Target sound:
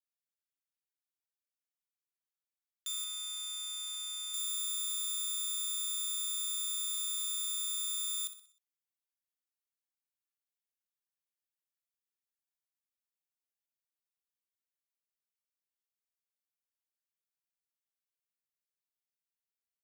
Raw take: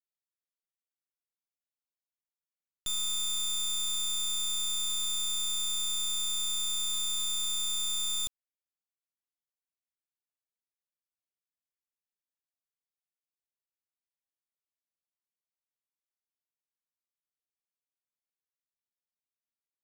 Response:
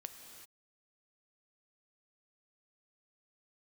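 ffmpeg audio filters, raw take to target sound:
-af "asetnsamples=n=441:p=0,asendcmd='3.04 highshelf g -6;4.34 highshelf g 6',highshelf=f=9k:g=3,highpass=f=1.2k:w=0.5412,highpass=f=1.2k:w=1.3066,aecho=1:1:62|124|186|248|310:0.251|0.116|0.0532|0.0244|0.0112,volume=-5.5dB"

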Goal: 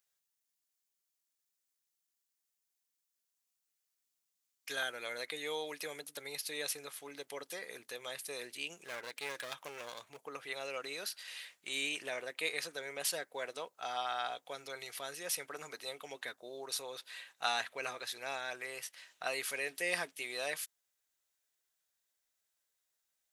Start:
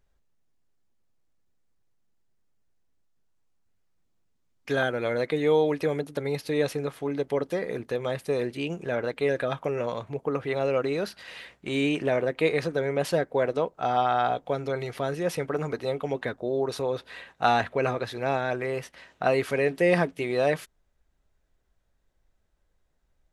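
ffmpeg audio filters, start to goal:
-filter_complex "[0:a]asettb=1/sr,asplit=3[a][b][c];[a]atrim=end=8.814[d];[b]atrim=start=8.81:end=10.23,asetpts=PTS-STARTPTS,afade=t=in:d=0.004:c=qsin,afade=t=out:st=1.416:d=0.004:c=qsin,aeval=exprs='clip(val(0),-1,0.0251)':c=same[e];[c]atrim=start=10.226[f];[d][e]acrossfade=d=0.004:c1=hsin:c2=qsin[g];[g][f]acrossfade=d=0.004:c1=qsin:c2=hsin,aderivative,volume=4.5dB"

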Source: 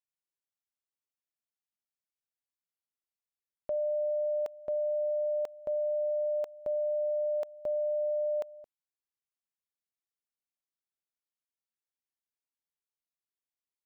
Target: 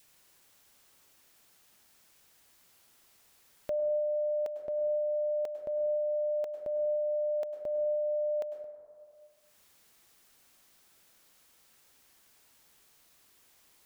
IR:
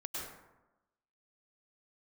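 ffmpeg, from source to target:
-filter_complex "[0:a]asplit=2[a][b];[1:a]atrim=start_sample=2205[c];[b][c]afir=irnorm=-1:irlink=0,volume=-4dB[d];[a][d]amix=inputs=2:normalize=0,acompressor=mode=upward:threshold=-37dB:ratio=2.5,adynamicequalizer=threshold=0.00316:dfrequency=1100:dqfactor=1.9:tfrequency=1100:tqfactor=1.9:attack=5:release=100:ratio=0.375:range=2.5:mode=cutabove:tftype=bell,volume=-2.5dB"

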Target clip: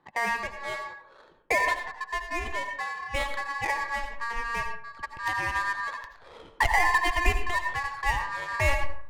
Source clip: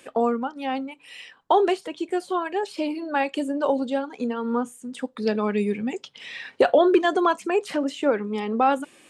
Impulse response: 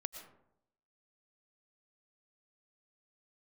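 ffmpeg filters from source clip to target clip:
-filter_complex "[0:a]aeval=exprs='val(0)*sin(2*PI*1400*n/s)':c=same,asubboost=boost=8:cutoff=74,adynamicsmooth=sensitivity=4.5:basefreq=1k[a];[1:a]atrim=start_sample=2205,asetrate=61740,aresample=44100[b];[a][b]afir=irnorm=-1:irlink=0,volume=2dB"

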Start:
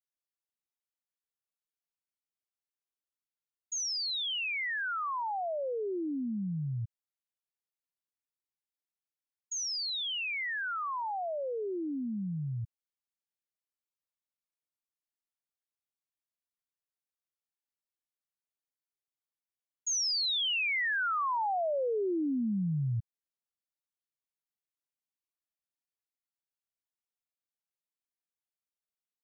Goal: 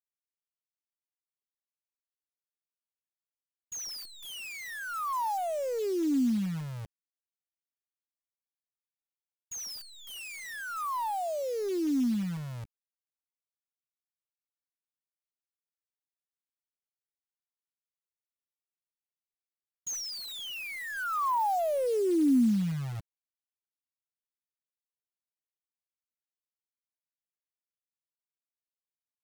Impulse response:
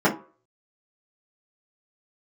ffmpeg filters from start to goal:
-af "equalizer=f=125:t=o:w=1:g=-7,equalizer=f=250:t=o:w=1:g=10,equalizer=f=1k:t=o:w=1:g=5,equalizer=f=2k:t=o:w=1:g=-8,equalizer=f=4k:t=o:w=1:g=-11,acrusher=bits=8:dc=4:mix=0:aa=0.000001"

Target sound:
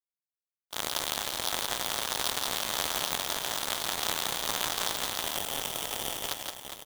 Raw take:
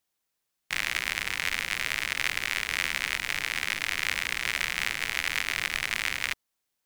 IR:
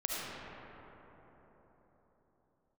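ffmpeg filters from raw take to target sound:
-filter_complex "[0:a]aemphasis=mode=production:type=50kf,agate=range=-33dB:threshold=-24dB:ratio=3:detection=peak,asettb=1/sr,asplit=3[a][b][c];[a]atrim=end=5.204[d];[b]atrim=start=5.2:end=6.28,asetpts=PTS-STARTPTS,afade=t=in:d=0.004:c=qsin,afade=t=out:st=1.076:d=0.004:c=qsin,asuperstop=centerf=3900:order=8:qfactor=0.86[e];[c]atrim=start=6.276[f];[d][e]acrossfade=d=0.004:c1=hsin:c2=qsin[g];[g][f]acrossfade=d=0.004:c1=qsin:c2=hsin,asplit=2[h][i];[i]aecho=0:1:170|408|741.2|1208|1861:0.631|0.398|0.251|0.158|0.1[j];[h][j]amix=inputs=2:normalize=0,aeval=exprs='val(0)*sgn(sin(2*PI*1300*n/s))':c=same,volume=-4.5dB"

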